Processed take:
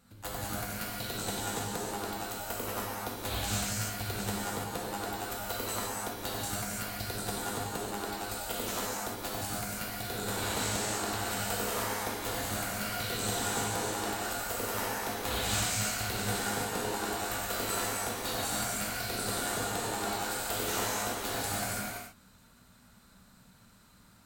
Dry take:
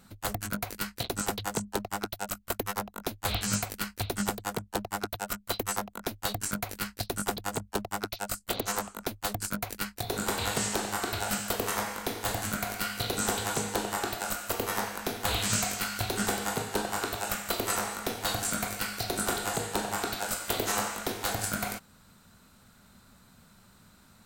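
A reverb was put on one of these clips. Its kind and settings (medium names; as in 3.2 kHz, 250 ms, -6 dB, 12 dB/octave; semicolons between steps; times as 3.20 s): gated-style reverb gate 360 ms flat, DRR -6 dB; trim -8.5 dB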